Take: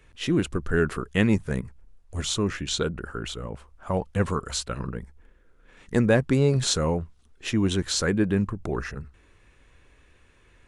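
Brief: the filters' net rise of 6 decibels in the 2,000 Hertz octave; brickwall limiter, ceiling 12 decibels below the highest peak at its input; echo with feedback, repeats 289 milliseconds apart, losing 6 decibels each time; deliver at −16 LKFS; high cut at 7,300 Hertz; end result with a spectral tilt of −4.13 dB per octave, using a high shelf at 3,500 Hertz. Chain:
low-pass filter 7,300 Hz
parametric band 2,000 Hz +5.5 dB
high-shelf EQ 3,500 Hz +8.5 dB
brickwall limiter −15 dBFS
repeating echo 289 ms, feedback 50%, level −6 dB
level +10.5 dB

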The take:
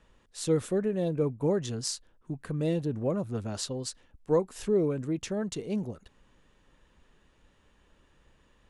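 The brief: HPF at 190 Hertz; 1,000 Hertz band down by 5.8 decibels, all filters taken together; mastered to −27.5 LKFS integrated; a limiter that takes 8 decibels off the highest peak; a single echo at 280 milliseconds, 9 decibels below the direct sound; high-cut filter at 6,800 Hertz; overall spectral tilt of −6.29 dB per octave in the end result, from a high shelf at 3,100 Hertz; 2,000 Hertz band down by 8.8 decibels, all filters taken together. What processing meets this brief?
high-pass filter 190 Hz
low-pass filter 6,800 Hz
parametric band 1,000 Hz −5 dB
parametric band 2,000 Hz −8.5 dB
high-shelf EQ 3,100 Hz −5 dB
brickwall limiter −23.5 dBFS
single-tap delay 280 ms −9 dB
level +7.5 dB

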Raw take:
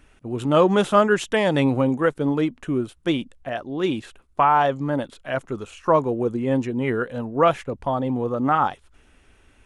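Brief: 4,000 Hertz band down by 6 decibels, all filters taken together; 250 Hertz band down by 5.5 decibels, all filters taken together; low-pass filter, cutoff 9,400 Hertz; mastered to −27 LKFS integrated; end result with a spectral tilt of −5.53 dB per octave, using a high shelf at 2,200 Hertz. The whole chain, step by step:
low-pass filter 9,400 Hz
parametric band 250 Hz −7 dB
high-shelf EQ 2,200 Hz −3.5 dB
parametric band 4,000 Hz −5 dB
level −2.5 dB

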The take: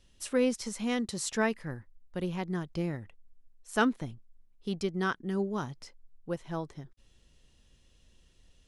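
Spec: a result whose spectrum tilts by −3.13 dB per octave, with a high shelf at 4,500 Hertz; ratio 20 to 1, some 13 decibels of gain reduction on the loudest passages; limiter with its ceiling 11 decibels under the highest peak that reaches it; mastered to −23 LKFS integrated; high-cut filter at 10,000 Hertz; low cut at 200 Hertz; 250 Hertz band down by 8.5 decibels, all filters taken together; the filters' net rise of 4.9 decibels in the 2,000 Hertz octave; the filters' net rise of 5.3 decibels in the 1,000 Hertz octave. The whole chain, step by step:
high-pass filter 200 Hz
low-pass filter 10,000 Hz
parametric band 250 Hz −8.5 dB
parametric band 1,000 Hz +6 dB
parametric band 2,000 Hz +3.5 dB
high-shelf EQ 4,500 Hz +4.5 dB
downward compressor 20 to 1, threshold −30 dBFS
level +18 dB
brickwall limiter −10.5 dBFS

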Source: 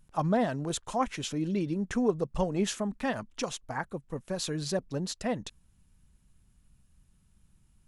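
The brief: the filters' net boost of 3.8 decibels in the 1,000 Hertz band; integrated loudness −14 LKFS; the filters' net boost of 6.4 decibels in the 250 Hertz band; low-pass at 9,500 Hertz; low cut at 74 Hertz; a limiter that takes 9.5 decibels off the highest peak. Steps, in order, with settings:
high-pass filter 74 Hz
low-pass filter 9,500 Hz
parametric band 250 Hz +8 dB
parametric band 1,000 Hz +4.5 dB
level +17 dB
brickwall limiter −4 dBFS

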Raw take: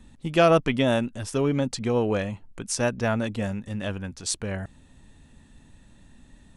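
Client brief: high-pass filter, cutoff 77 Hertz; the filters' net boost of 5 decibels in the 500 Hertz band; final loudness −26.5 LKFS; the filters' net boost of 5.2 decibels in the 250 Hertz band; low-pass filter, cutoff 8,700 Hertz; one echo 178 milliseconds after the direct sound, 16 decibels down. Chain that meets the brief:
high-pass filter 77 Hz
low-pass filter 8,700 Hz
parametric band 250 Hz +5 dB
parametric band 500 Hz +5 dB
single-tap delay 178 ms −16 dB
level −5 dB

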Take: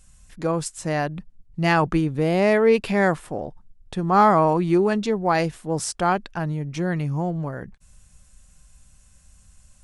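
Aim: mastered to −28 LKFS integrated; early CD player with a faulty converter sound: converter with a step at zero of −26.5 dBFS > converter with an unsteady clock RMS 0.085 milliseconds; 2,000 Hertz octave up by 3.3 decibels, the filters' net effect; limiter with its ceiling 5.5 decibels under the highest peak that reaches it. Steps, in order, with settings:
parametric band 2,000 Hz +4 dB
brickwall limiter −11 dBFS
converter with a step at zero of −26.5 dBFS
converter with an unsteady clock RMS 0.085 ms
level −7 dB

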